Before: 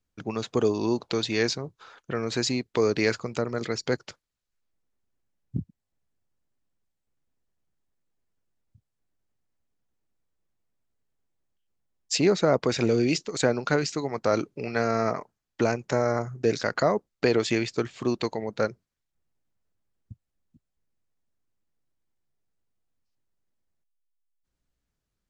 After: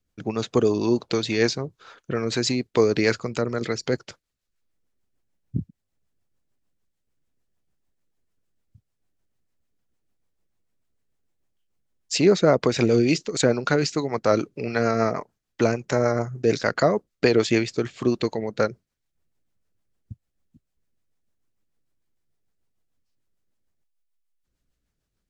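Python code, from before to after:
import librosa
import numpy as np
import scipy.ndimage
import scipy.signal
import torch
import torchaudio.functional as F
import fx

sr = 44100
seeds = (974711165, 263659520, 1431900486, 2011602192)

y = fx.rotary(x, sr, hz=6.7)
y = y * 10.0 ** (5.5 / 20.0)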